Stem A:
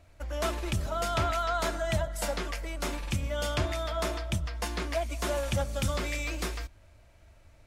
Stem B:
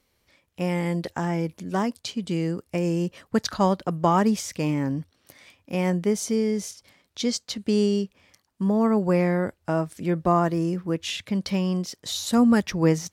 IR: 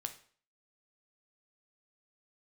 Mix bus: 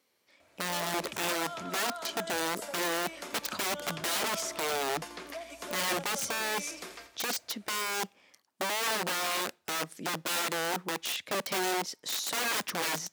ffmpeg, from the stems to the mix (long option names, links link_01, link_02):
-filter_complex "[0:a]acompressor=threshold=-37dB:ratio=10,adelay=400,volume=0.5dB,asplit=2[link_01][link_02];[link_02]volume=-12dB[link_03];[1:a]aeval=exprs='(mod(14.1*val(0)+1,2)-1)/14.1':channel_layout=same,volume=-3.5dB,asplit=2[link_04][link_05];[link_05]volume=-18dB[link_06];[2:a]atrim=start_sample=2205[link_07];[link_06][link_07]afir=irnorm=-1:irlink=0[link_08];[link_03]aecho=0:1:85|170|255|340|425|510:1|0.46|0.212|0.0973|0.0448|0.0206[link_09];[link_01][link_04][link_08][link_09]amix=inputs=4:normalize=0,highpass=270"